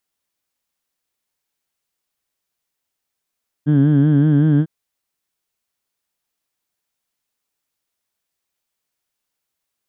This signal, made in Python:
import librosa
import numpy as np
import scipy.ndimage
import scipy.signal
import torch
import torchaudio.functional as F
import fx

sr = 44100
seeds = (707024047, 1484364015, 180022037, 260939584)

y = fx.formant_vowel(sr, seeds[0], length_s=1.0, hz=143.0, glide_st=1.0, vibrato_hz=5.3, vibrato_st=0.9, f1_hz=250.0, f2_hz=1600.0, f3_hz=3200.0)